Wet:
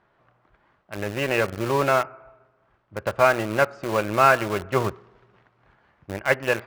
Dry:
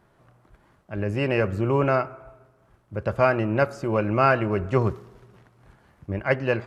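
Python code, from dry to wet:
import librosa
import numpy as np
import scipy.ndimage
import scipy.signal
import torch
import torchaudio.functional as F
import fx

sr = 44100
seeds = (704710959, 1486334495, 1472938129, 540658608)

p1 = scipy.signal.sosfilt(scipy.signal.butter(2, 3300.0, 'lowpass', fs=sr, output='sos'), x)
p2 = np.where(np.abs(p1) >= 10.0 ** (-22.5 / 20.0), p1, 0.0)
p3 = p1 + (p2 * librosa.db_to_amplitude(-4.0))
p4 = fx.low_shelf(p3, sr, hz=440.0, db=-11.0)
y = p4 * librosa.db_to_amplitude(1.0)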